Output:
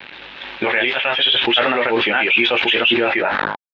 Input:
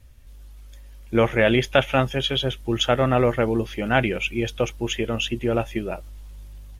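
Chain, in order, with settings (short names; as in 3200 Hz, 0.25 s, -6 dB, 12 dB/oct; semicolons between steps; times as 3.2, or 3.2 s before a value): ending faded out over 1.76 s; high shelf 2400 Hz +7.5 dB; compressor 16:1, threshold -30 dBFS, peak gain reduction 20.5 dB; flange 1.1 Hz, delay 7.5 ms, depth 5.4 ms, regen -48%; granular stretch 0.55×, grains 0.155 s; bit-crush 9-bit; low-pass sweep 2600 Hz -> 660 Hz, 3–4.07; speaker cabinet 320–4400 Hz, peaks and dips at 880 Hz +7 dB, 1600 Hz +6 dB, 3800 Hz +7 dB; doubler 20 ms -12.5 dB; maximiser +26 dB; sustainer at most 23 dB/s; gain -5.5 dB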